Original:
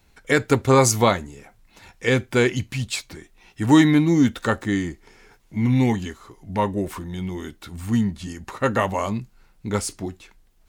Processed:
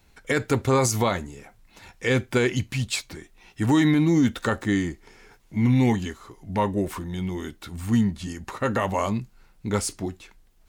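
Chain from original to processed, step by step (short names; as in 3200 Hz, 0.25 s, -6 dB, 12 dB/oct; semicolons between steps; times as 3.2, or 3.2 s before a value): limiter -12 dBFS, peak gain reduction 7 dB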